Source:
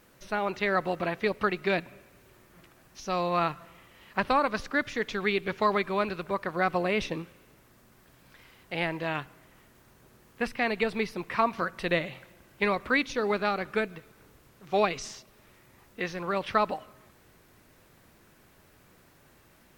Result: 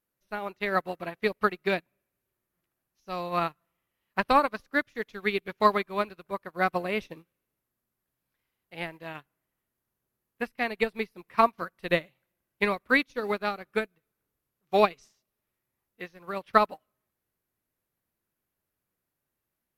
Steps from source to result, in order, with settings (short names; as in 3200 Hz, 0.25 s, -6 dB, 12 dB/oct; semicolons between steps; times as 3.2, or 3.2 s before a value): bell 12000 Hz +14.5 dB 0.44 oct; upward expander 2.5:1, over -43 dBFS; gain +6 dB